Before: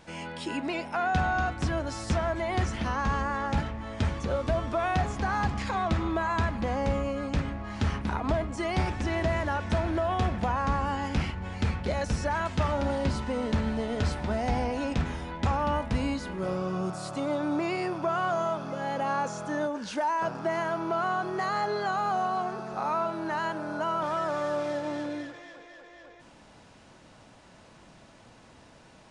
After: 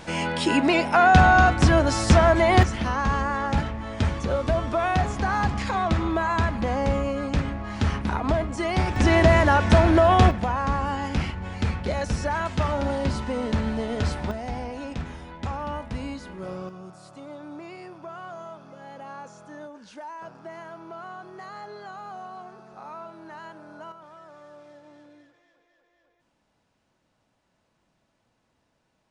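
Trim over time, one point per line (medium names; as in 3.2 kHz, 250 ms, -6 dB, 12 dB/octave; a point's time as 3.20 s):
+11.5 dB
from 2.63 s +4 dB
from 8.96 s +11 dB
from 10.31 s +2.5 dB
from 14.31 s -4 dB
from 16.69 s -11 dB
from 23.92 s -18 dB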